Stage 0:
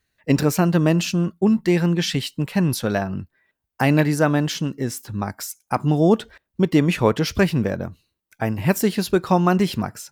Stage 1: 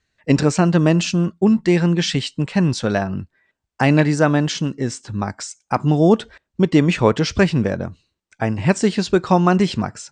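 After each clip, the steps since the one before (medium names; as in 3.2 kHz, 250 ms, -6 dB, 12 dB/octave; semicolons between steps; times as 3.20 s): steep low-pass 8.5 kHz 72 dB/octave; trim +2.5 dB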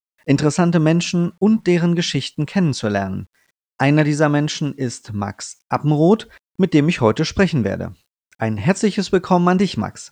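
bit crusher 10-bit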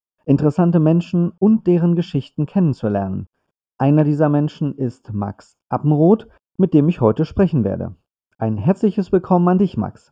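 boxcar filter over 22 samples; trim +1.5 dB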